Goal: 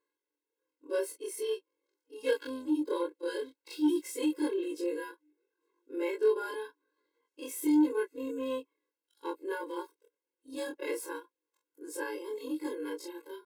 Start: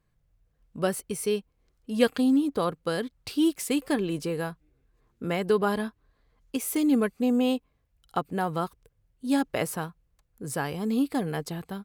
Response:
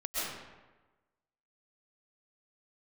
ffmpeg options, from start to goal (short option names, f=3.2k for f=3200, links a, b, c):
-filter_complex "[0:a]afftfilt=real='re':imag='-im':win_size=2048:overlap=0.75,acrossover=split=2200[a][b];[b]asoftclip=type=hard:threshold=-32dB[c];[a][c]amix=inputs=2:normalize=0,atempo=0.88,lowshelf=f=190:t=q:w=3:g=-7,asoftclip=type=tanh:threshold=-17.5dB,afftfilt=real='re*eq(mod(floor(b*sr/1024/280),2),1)':imag='im*eq(mod(floor(b*sr/1024/280),2),1)':win_size=1024:overlap=0.75"